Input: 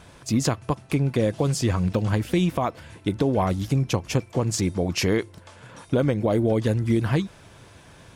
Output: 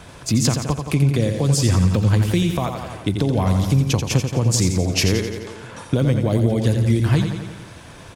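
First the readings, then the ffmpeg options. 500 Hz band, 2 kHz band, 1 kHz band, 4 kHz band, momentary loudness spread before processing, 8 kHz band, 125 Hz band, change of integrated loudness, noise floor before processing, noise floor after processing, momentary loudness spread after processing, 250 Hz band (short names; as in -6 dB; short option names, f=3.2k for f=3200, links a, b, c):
+0.5 dB, +3.5 dB, +0.5 dB, +7.0 dB, 5 LU, +8.0 dB, +7.0 dB, +5.0 dB, -50 dBFS, -41 dBFS, 10 LU, +3.5 dB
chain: -filter_complex "[0:a]aecho=1:1:86|172|258|344|430|516|602:0.447|0.246|0.135|0.0743|0.0409|0.0225|0.0124,acrossover=split=180|3000[a][b][c];[b]acompressor=threshold=-35dB:ratio=2[d];[a][d][c]amix=inputs=3:normalize=0,volume=7dB"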